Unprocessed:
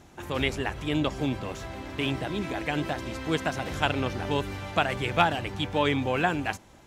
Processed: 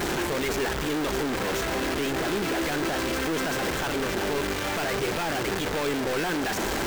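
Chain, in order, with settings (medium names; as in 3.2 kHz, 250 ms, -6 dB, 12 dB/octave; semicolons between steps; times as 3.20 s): one-bit comparator; careless resampling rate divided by 2×, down filtered, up hold; fifteen-band graphic EQ 100 Hz -10 dB, 400 Hz +7 dB, 1.6 kHz +4 dB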